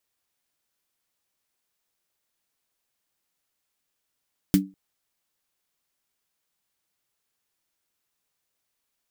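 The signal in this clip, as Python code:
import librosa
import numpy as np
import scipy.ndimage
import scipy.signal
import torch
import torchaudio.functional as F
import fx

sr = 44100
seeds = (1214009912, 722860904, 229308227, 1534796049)

y = fx.drum_snare(sr, seeds[0], length_s=0.2, hz=190.0, second_hz=290.0, noise_db=-9.5, noise_from_hz=1400.0, decay_s=0.27, noise_decay_s=0.1)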